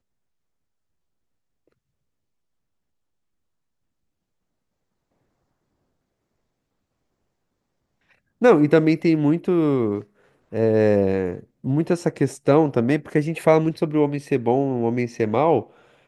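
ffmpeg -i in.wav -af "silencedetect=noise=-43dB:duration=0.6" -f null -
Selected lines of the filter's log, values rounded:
silence_start: 0.00
silence_end: 8.41 | silence_duration: 8.41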